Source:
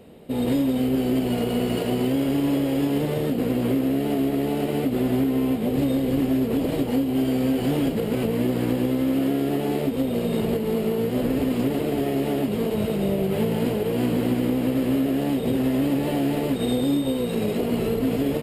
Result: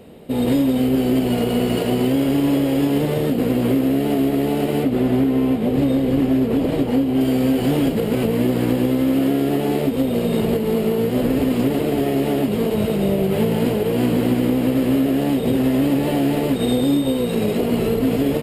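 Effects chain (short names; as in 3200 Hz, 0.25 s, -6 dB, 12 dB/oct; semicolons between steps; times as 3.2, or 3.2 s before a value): 4.83–7.21 high shelf 4800 Hz -7.5 dB; gain +4.5 dB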